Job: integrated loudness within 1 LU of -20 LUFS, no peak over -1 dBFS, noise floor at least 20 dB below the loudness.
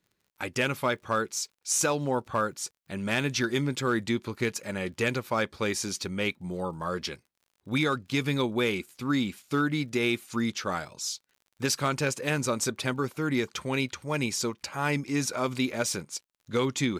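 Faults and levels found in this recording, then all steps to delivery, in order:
ticks 41/s; loudness -29.5 LUFS; peak -15.0 dBFS; loudness target -20.0 LUFS
-> de-click; gain +9.5 dB

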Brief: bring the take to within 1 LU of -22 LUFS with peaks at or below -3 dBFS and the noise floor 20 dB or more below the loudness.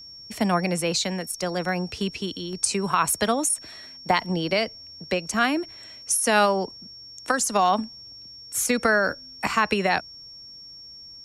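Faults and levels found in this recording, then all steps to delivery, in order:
steady tone 5500 Hz; tone level -41 dBFS; loudness -24.0 LUFS; peak -7.0 dBFS; loudness target -22.0 LUFS
-> notch 5500 Hz, Q 30; gain +2 dB

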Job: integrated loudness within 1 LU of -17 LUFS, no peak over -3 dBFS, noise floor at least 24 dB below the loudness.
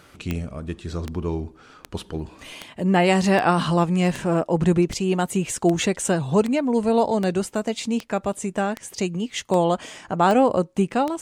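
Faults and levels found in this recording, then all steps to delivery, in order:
clicks 15; loudness -22.5 LUFS; peak -5.0 dBFS; loudness target -17.0 LUFS
-> de-click; gain +5.5 dB; limiter -3 dBFS

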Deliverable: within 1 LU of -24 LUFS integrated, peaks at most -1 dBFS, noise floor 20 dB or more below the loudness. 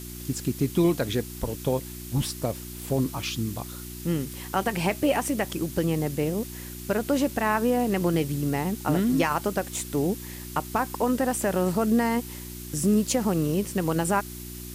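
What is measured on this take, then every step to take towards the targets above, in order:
hum 60 Hz; harmonics up to 360 Hz; hum level -37 dBFS; noise floor -39 dBFS; noise floor target -47 dBFS; loudness -26.5 LUFS; peak -11.0 dBFS; loudness target -24.0 LUFS
-> de-hum 60 Hz, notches 6; denoiser 8 dB, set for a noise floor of -39 dBFS; gain +2.5 dB

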